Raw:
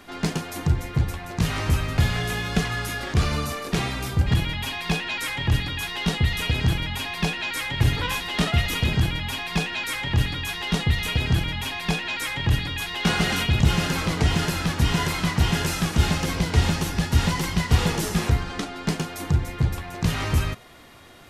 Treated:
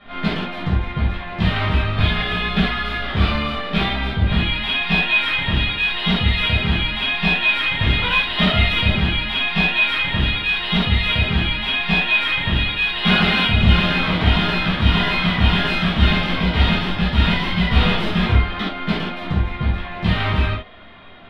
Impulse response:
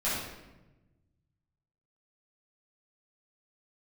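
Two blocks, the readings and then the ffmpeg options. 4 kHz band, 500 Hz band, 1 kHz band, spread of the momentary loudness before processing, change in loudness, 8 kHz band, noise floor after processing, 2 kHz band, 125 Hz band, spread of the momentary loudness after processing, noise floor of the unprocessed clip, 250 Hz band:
+8.0 dB, +4.0 dB, +6.0 dB, 6 LU, +6.0 dB, below −15 dB, −30 dBFS, +9.0 dB, +2.5 dB, 7 LU, −37 dBFS, +5.5 dB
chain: -filter_complex "[0:a]adynamicsmooth=sensitivity=6.5:basefreq=3100,highshelf=frequency=4800:width_type=q:width=3:gain=-12[link_01];[1:a]atrim=start_sample=2205,atrim=end_sample=3969[link_02];[link_01][link_02]afir=irnorm=-1:irlink=0,volume=-2.5dB"

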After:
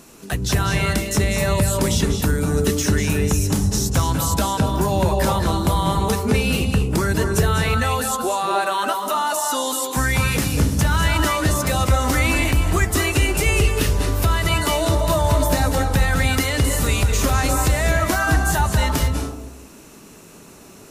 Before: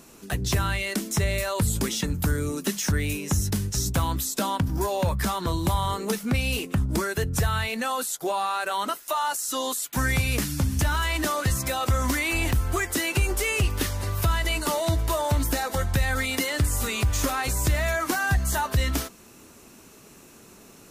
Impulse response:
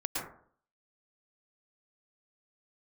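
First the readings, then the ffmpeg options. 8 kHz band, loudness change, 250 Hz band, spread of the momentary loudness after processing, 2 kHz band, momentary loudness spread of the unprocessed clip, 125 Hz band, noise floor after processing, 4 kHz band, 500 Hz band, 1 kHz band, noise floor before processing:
+5.0 dB, +6.0 dB, +7.0 dB, 3 LU, +5.0 dB, 3 LU, +6.5 dB, −44 dBFS, +5.5 dB, +7.5 dB, +6.5 dB, −50 dBFS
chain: -filter_complex "[0:a]asplit=2[link_01][link_02];[1:a]atrim=start_sample=2205,asetrate=24696,aresample=44100[link_03];[link_02][link_03]afir=irnorm=-1:irlink=0,volume=-6dB[link_04];[link_01][link_04]amix=inputs=2:normalize=0"

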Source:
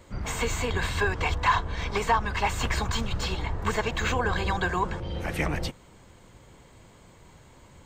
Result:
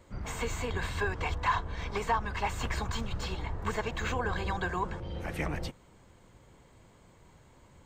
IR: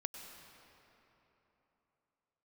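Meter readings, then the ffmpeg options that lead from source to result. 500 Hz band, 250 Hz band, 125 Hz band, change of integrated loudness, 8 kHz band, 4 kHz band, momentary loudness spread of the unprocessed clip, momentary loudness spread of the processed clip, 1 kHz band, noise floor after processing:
−5.5 dB, −5.5 dB, −5.5 dB, −6.0 dB, −7.5 dB, −8.0 dB, 6 LU, 6 LU, −5.5 dB, −59 dBFS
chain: -filter_complex "[0:a]asplit=2[link_01][link_02];[1:a]atrim=start_sample=2205,atrim=end_sample=3969,lowpass=2500[link_03];[link_02][link_03]afir=irnorm=-1:irlink=0,volume=-8dB[link_04];[link_01][link_04]amix=inputs=2:normalize=0,volume=-7.5dB"

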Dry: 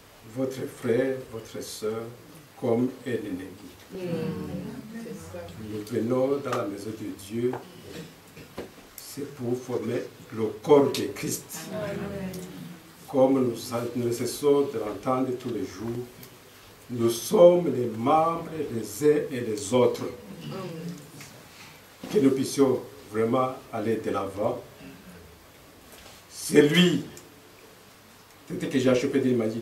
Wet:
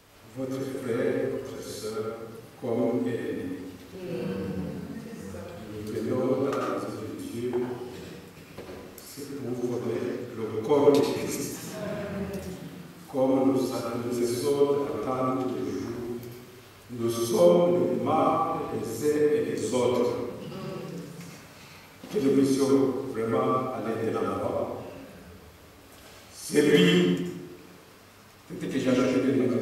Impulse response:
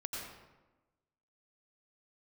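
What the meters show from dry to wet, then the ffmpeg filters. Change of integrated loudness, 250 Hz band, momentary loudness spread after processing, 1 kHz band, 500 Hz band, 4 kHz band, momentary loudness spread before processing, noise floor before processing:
−1.0 dB, 0.0 dB, 20 LU, −0.5 dB, −1.0 dB, −2.0 dB, 20 LU, −51 dBFS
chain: -filter_complex "[1:a]atrim=start_sample=2205[link_01];[0:a][link_01]afir=irnorm=-1:irlink=0,volume=-1.5dB"

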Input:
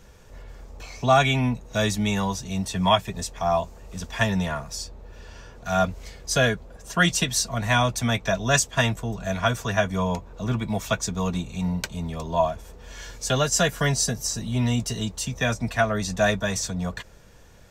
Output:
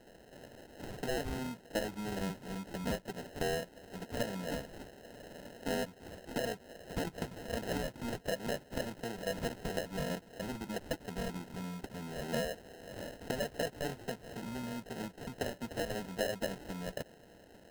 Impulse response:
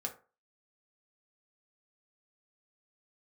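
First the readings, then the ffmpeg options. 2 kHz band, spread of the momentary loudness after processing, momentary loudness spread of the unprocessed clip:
−16.5 dB, 12 LU, 12 LU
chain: -filter_complex "[0:a]acrossover=split=2700[link_01][link_02];[link_02]acompressor=threshold=-38dB:ratio=4:attack=1:release=60[link_03];[link_01][link_03]amix=inputs=2:normalize=0,alimiter=limit=-14.5dB:level=0:latency=1:release=178,acompressor=threshold=-32dB:ratio=4,highpass=280,lowpass=3800,acrusher=samples=38:mix=1:aa=0.000001"

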